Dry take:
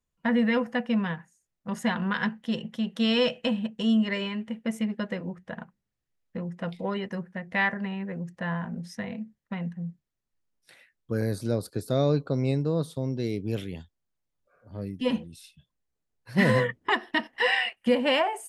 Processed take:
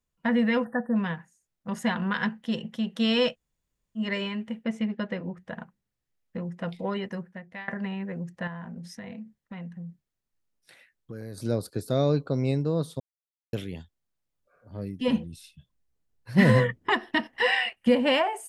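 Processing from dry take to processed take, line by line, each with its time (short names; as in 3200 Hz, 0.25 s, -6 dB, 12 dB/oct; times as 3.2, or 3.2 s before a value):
0.65–0.96 spectral delete 1900–8400 Hz
3.31–4 room tone, crossfade 0.10 s
4.64–5.37 LPF 4800 Hz
7.07–7.68 fade out, to -23.5 dB
8.47–11.38 compressor 5:1, threshold -36 dBFS
13–13.53 mute
15.08–18.18 low shelf 190 Hz +8 dB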